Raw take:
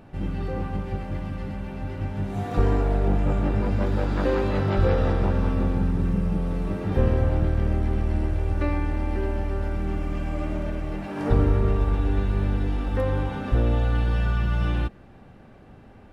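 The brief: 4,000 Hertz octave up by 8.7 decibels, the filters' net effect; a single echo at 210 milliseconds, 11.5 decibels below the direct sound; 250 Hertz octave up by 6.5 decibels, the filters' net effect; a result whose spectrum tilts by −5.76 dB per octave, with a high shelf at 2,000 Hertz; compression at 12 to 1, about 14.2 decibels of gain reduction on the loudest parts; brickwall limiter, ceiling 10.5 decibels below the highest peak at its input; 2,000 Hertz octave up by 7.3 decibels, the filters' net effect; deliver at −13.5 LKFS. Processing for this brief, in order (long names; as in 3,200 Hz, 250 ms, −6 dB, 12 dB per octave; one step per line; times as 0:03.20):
parametric band 250 Hz +8.5 dB
high-shelf EQ 2,000 Hz +4.5 dB
parametric band 2,000 Hz +6 dB
parametric band 4,000 Hz +4.5 dB
downward compressor 12 to 1, threshold −27 dBFS
brickwall limiter −26.5 dBFS
single-tap delay 210 ms −11.5 dB
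level +22.5 dB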